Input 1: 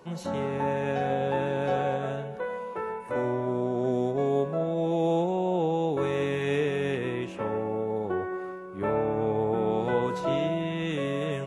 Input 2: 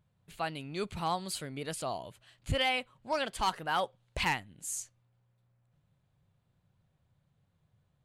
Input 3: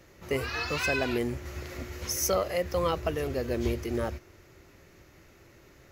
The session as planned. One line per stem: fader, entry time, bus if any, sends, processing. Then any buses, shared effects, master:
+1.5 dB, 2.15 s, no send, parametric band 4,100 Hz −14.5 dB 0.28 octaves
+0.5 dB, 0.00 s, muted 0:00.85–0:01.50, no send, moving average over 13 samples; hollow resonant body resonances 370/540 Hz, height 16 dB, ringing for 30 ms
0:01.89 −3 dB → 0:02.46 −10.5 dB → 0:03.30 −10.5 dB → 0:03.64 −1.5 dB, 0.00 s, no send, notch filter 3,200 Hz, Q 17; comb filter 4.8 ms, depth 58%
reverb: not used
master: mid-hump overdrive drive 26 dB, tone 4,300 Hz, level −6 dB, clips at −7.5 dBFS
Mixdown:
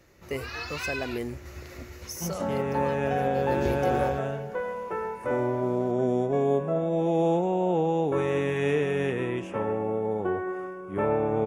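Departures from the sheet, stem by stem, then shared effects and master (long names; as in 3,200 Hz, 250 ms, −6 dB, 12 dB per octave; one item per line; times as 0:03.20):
stem 2: muted
stem 3: missing comb filter 4.8 ms, depth 58%
master: missing mid-hump overdrive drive 26 dB, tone 4,300 Hz, level −6 dB, clips at −7.5 dBFS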